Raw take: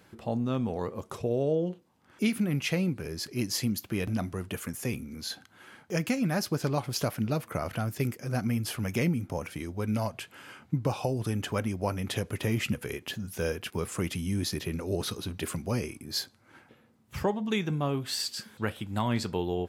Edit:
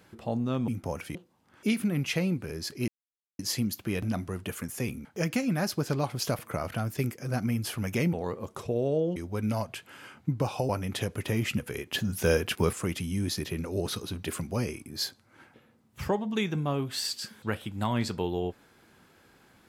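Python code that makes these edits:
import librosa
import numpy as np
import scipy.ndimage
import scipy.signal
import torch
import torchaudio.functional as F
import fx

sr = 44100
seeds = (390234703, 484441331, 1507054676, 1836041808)

y = fx.edit(x, sr, fx.swap(start_s=0.68, length_s=1.03, other_s=9.14, other_length_s=0.47),
    fx.insert_silence(at_s=3.44, length_s=0.51),
    fx.cut(start_s=5.1, length_s=0.69),
    fx.cut(start_s=7.13, length_s=0.27),
    fx.cut(start_s=11.14, length_s=0.7),
    fx.clip_gain(start_s=13.09, length_s=0.79, db=6.5), tone=tone)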